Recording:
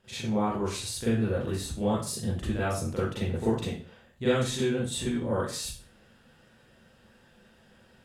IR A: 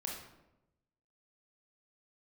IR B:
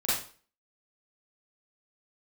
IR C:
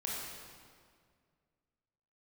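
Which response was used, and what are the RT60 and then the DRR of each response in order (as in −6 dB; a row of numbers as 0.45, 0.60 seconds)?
B; 0.95, 0.40, 2.0 seconds; −1.5, −10.5, −5.0 decibels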